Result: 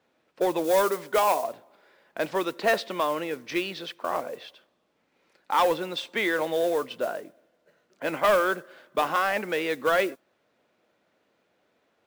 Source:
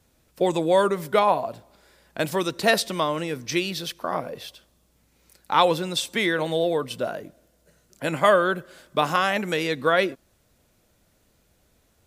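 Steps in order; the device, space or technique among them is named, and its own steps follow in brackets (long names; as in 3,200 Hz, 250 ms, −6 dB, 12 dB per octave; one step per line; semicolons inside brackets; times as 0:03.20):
carbon microphone (band-pass filter 320–2,800 Hz; soft clipping −14.5 dBFS, distortion −14 dB; noise that follows the level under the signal 21 dB)
0:00.64–0:01.44: bass and treble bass −4 dB, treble +7 dB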